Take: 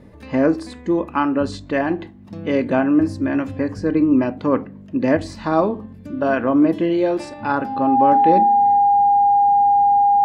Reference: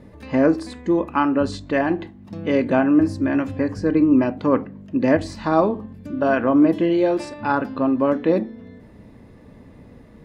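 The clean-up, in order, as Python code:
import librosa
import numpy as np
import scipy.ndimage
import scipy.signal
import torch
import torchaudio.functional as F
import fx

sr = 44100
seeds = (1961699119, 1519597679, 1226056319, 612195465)

y = fx.notch(x, sr, hz=810.0, q=30.0)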